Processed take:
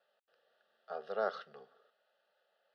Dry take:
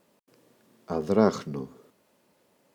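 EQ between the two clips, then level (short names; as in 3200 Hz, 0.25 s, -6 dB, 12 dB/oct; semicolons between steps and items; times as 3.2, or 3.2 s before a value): BPF 760–3100 Hz; notch 1000 Hz, Q 9.3; fixed phaser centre 1500 Hz, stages 8; -2.5 dB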